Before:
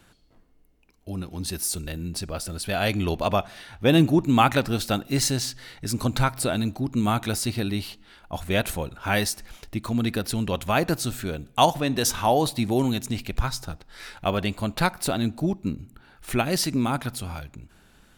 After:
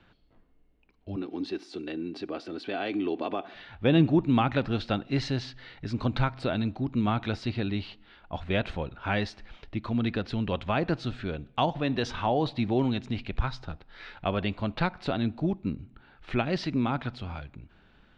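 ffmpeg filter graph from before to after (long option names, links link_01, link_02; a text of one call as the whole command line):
ffmpeg -i in.wav -filter_complex "[0:a]asettb=1/sr,asplit=3[link_01][link_02][link_03];[link_01]atrim=end=1.164[link_04];[link_02]atrim=start=1.16:end=3.54,asetpts=PTS-STARTPTS,afade=type=in:duration=0.004:curve=qsin,afade=type=out:start_time=2.376:duration=0.004:curve=qsin,aecho=1:1:2.6:0.31,atrim=end_sample=104958,acompressor=threshold=-26dB:ratio=4:attack=3.2:release=140:knee=1:detection=peak,highpass=frequency=290:width_type=q:width=3[link_05];[link_03]atrim=start=3.536[link_06];[link_04][link_05]acrossfade=duration=0.004:curve1=hsin:curve2=qsin[link_07];[link_07][link_06]acrossfade=duration=0.004:curve1=qsin:curve2=hsin,lowpass=frequency=3800:width=0.5412,lowpass=frequency=3800:width=1.3066,acrossover=split=460[link_08][link_09];[link_09]acompressor=threshold=-23dB:ratio=3[link_10];[link_08][link_10]amix=inputs=2:normalize=0,volume=-3dB" out.wav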